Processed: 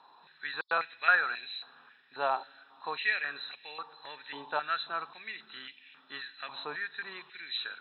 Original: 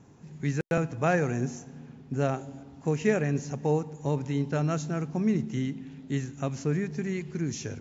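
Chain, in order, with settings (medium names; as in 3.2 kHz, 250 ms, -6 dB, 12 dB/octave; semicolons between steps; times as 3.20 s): knee-point frequency compression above 3.4 kHz 4:1; band-stop 2.1 kHz, Q 5.7; step-sequenced high-pass 3.7 Hz 950–2300 Hz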